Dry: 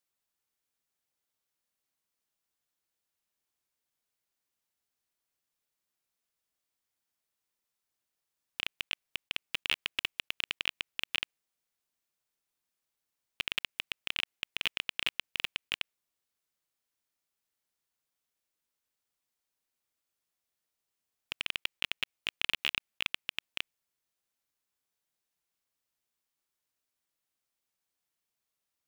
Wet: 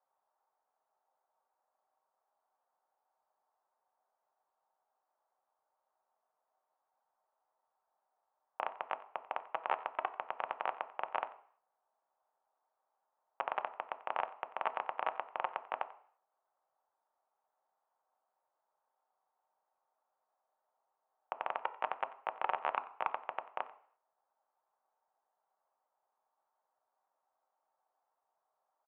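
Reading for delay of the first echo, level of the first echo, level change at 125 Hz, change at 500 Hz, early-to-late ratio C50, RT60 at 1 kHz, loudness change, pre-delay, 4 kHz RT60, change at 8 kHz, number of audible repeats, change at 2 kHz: 91 ms, −19.5 dB, below −15 dB, +12.0 dB, 15.0 dB, 0.55 s, −4.5 dB, 3 ms, 0.60 s, below −25 dB, 1, −9.0 dB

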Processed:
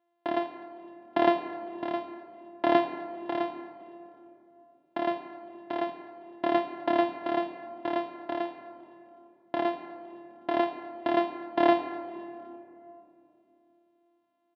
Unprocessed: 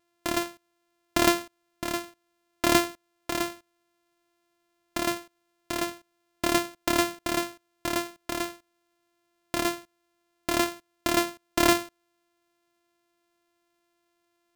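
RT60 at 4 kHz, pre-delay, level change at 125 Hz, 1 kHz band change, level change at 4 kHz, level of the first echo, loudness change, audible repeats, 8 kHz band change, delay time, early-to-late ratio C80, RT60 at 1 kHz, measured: 1.7 s, 6 ms, −11.0 dB, +1.5 dB, −11.5 dB, −23.0 dB, −2.0 dB, 2, below −40 dB, 255 ms, 10.5 dB, 2.6 s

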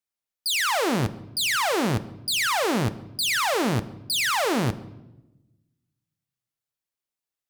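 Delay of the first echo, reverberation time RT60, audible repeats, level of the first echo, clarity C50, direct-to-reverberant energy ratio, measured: no echo audible, 1.0 s, no echo audible, no echo audible, 16.5 dB, 11.5 dB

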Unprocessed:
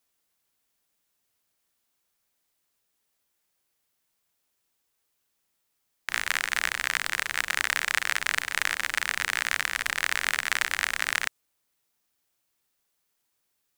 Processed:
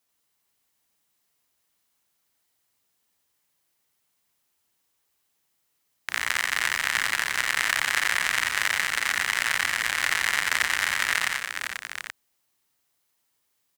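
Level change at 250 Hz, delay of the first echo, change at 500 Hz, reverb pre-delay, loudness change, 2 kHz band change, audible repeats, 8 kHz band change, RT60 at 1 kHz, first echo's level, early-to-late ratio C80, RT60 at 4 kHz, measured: +3.0 dB, 87 ms, +2.0 dB, no reverb audible, +2.5 dB, +3.0 dB, 4, +3.0 dB, no reverb audible, −3.0 dB, no reverb audible, no reverb audible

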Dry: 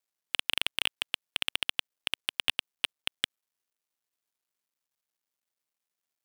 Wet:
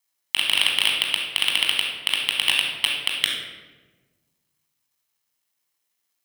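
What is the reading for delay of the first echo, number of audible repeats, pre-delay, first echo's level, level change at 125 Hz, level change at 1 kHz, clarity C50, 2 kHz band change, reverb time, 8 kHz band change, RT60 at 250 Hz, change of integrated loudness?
no echo audible, no echo audible, 20 ms, no echo audible, +9.0 dB, +9.0 dB, 1.5 dB, +10.0 dB, 1.3 s, +11.5 dB, 1.8 s, +10.5 dB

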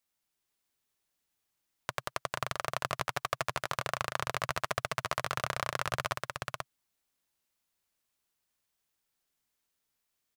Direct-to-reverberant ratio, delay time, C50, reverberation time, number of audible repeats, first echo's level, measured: no reverb audible, 483 ms, no reverb audible, no reverb audible, 1, −3.5 dB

